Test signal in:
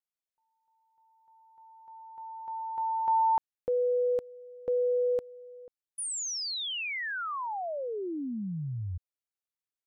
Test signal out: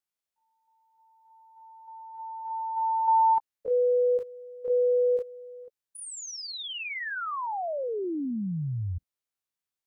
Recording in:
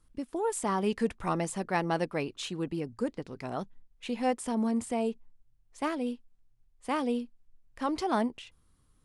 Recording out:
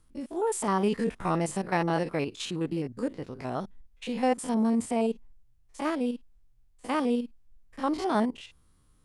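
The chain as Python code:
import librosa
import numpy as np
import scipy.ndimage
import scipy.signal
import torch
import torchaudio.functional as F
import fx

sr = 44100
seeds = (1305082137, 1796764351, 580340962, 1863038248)

y = fx.spec_steps(x, sr, hold_ms=50)
y = y * librosa.db_to_amplitude(4.0)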